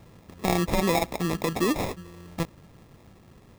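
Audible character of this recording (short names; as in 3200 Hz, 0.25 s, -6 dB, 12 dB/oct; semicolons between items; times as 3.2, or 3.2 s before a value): aliases and images of a low sample rate 1500 Hz, jitter 0%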